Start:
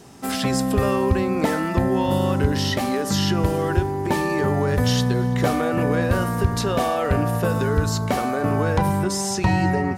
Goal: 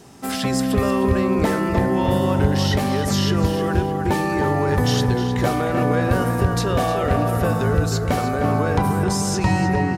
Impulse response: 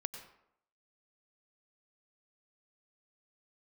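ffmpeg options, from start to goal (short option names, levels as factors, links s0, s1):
-filter_complex "[0:a]asplit=2[s0][s1];[s1]adelay=307,lowpass=f=2600:p=1,volume=0.531,asplit=2[s2][s3];[s3]adelay=307,lowpass=f=2600:p=1,volume=0.53,asplit=2[s4][s5];[s5]adelay=307,lowpass=f=2600:p=1,volume=0.53,asplit=2[s6][s7];[s7]adelay=307,lowpass=f=2600:p=1,volume=0.53,asplit=2[s8][s9];[s9]adelay=307,lowpass=f=2600:p=1,volume=0.53,asplit=2[s10][s11];[s11]adelay=307,lowpass=f=2600:p=1,volume=0.53,asplit=2[s12][s13];[s13]adelay=307,lowpass=f=2600:p=1,volume=0.53[s14];[s0][s2][s4][s6][s8][s10][s12][s14]amix=inputs=8:normalize=0"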